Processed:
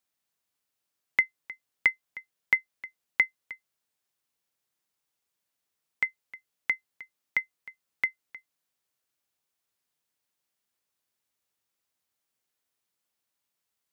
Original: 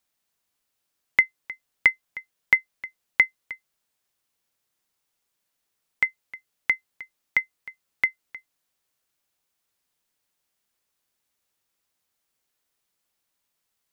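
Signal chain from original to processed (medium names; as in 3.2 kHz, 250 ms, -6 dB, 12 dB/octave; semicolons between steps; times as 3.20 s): high-pass 61 Hz 24 dB/octave; trim -5 dB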